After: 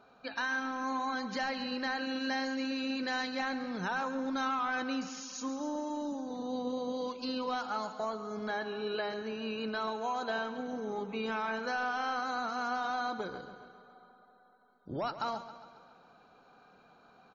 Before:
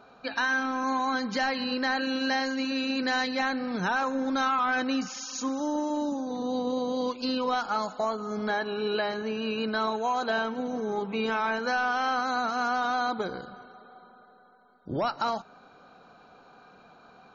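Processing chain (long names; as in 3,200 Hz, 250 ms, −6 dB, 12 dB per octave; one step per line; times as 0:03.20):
repeating echo 136 ms, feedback 58%, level −13 dB
level −7 dB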